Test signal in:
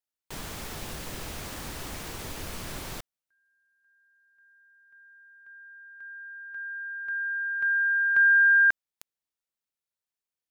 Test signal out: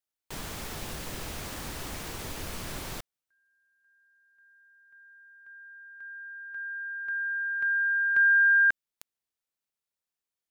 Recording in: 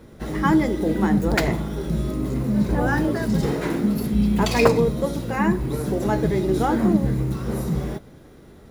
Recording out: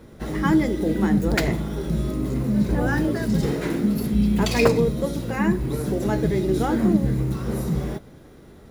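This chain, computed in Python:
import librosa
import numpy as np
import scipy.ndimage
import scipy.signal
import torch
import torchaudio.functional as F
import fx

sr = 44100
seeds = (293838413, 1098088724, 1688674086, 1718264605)

y = fx.dynamic_eq(x, sr, hz=930.0, q=1.2, threshold_db=-35.0, ratio=4.0, max_db=-5)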